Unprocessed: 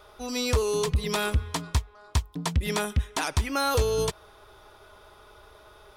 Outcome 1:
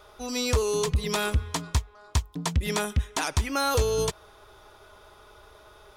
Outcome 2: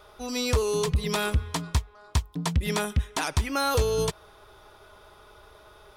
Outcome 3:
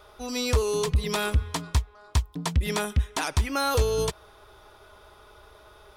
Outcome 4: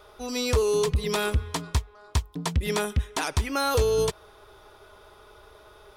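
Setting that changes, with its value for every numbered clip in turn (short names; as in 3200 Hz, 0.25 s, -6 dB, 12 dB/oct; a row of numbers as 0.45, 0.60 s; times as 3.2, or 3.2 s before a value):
bell, frequency: 6700, 160, 62, 420 Hz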